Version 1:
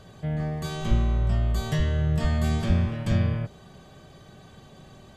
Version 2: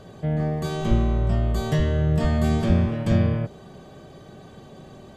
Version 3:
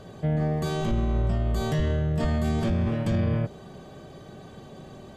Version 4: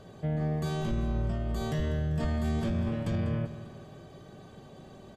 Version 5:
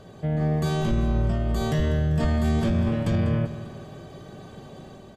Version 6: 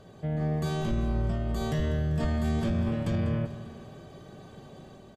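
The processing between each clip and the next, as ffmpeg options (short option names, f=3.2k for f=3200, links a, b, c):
-af "equalizer=f=380:w=0.5:g=8"
-af "alimiter=limit=-17.5dB:level=0:latency=1:release=25"
-af "aecho=1:1:196|392|588|784|980:0.211|0.108|0.055|0.028|0.0143,volume=-5.5dB"
-af "dynaudnorm=f=140:g=5:m=3.5dB,volume=3.5dB"
-af "aecho=1:1:440:0.0891,volume=-5dB"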